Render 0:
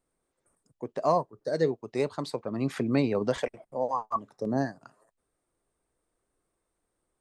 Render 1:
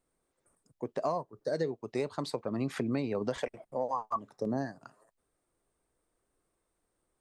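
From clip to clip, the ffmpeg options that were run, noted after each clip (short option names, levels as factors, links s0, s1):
-af "acompressor=threshold=0.0398:ratio=6"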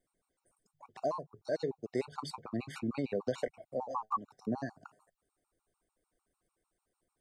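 -af "bandreject=f=50:t=h:w=6,bandreject=f=100:t=h:w=6,bandreject=f=150:t=h:w=6,afftfilt=real='re*gt(sin(2*PI*6.7*pts/sr)*(1-2*mod(floor(b*sr/1024/740),2)),0)':imag='im*gt(sin(2*PI*6.7*pts/sr)*(1-2*mod(floor(b*sr/1024/740),2)),0)':win_size=1024:overlap=0.75"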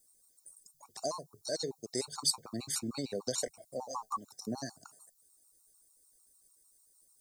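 -af "aexciter=amount=11.8:drive=6.5:freq=4200,volume=0.708"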